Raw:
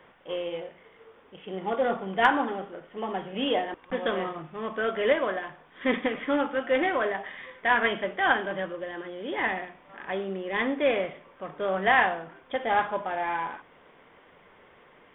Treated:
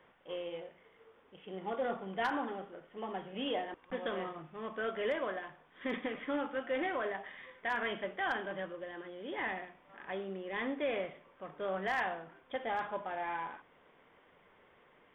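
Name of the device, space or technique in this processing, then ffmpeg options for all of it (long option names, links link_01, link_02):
clipper into limiter: -af "asoftclip=type=hard:threshold=-12.5dB,alimiter=limit=-17dB:level=0:latency=1:release=31,volume=-8.5dB"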